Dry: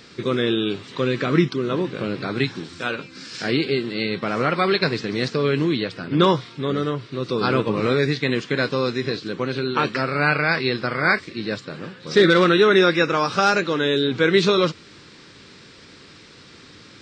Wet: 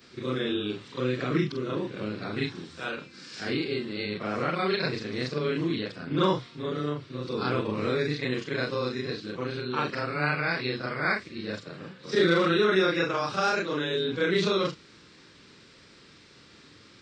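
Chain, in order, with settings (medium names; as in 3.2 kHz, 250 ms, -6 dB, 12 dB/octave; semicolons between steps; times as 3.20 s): short-time spectra conjugated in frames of 95 ms; trim -4.5 dB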